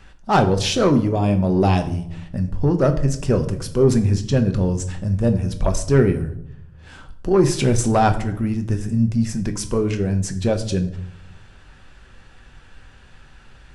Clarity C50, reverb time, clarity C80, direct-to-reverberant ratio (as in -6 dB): 13.0 dB, 0.75 s, 16.0 dB, 6.0 dB